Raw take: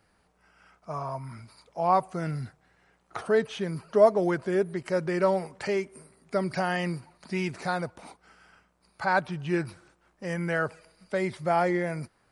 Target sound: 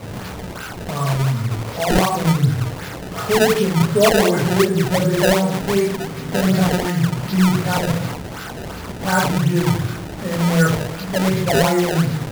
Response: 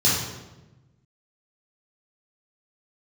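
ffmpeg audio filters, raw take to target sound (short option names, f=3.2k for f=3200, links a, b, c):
-filter_complex "[0:a]aeval=exprs='val(0)+0.5*0.0251*sgn(val(0))':c=same[a];[1:a]atrim=start_sample=2205,afade=t=out:st=0.32:d=0.01,atrim=end_sample=14553[b];[a][b]afir=irnorm=-1:irlink=0,apsyclip=-4.5dB,acrusher=samples=23:mix=1:aa=0.000001:lfo=1:lforange=36.8:lforate=2.7,volume=-5.5dB"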